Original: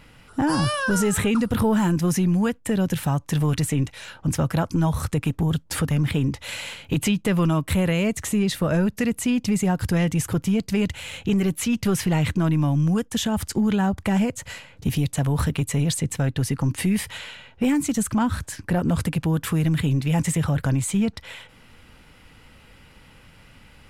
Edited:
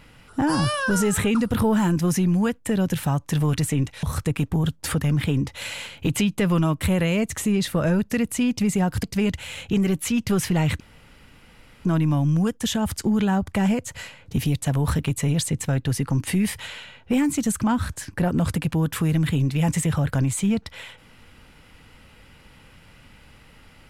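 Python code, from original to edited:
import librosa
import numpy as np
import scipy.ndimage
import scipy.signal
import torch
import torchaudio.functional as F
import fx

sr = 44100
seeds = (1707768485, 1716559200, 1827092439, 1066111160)

y = fx.edit(x, sr, fx.cut(start_s=4.03, length_s=0.87),
    fx.cut(start_s=9.9, length_s=0.69),
    fx.insert_room_tone(at_s=12.36, length_s=1.05), tone=tone)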